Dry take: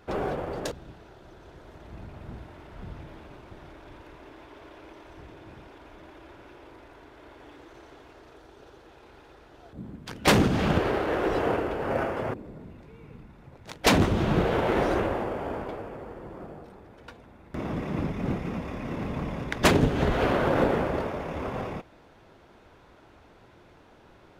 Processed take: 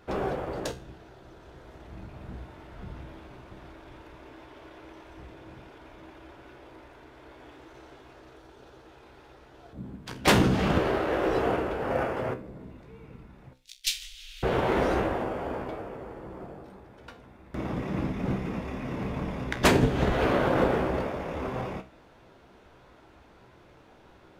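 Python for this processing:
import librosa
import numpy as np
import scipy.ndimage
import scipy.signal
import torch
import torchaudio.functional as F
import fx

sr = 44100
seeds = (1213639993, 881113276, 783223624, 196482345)

y = fx.cheby2_bandstop(x, sr, low_hz=100.0, high_hz=790.0, order=4, stop_db=70, at=(13.53, 14.43))
y = fx.comb_fb(y, sr, f0_hz=64.0, decay_s=0.32, harmonics='all', damping=0.0, mix_pct=70)
y = F.gain(torch.from_numpy(y), 5.0).numpy()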